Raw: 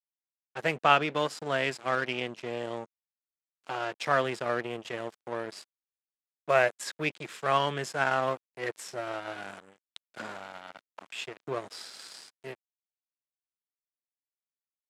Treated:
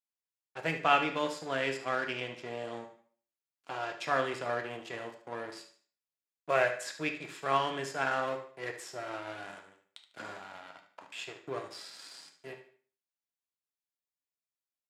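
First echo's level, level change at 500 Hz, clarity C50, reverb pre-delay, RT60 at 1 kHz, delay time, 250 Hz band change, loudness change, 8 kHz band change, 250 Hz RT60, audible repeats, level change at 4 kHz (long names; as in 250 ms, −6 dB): −12.0 dB, −4.0 dB, 8.5 dB, 3 ms, 0.45 s, 74 ms, −2.5 dB, −3.5 dB, −3.5 dB, 0.50 s, 3, −3.5 dB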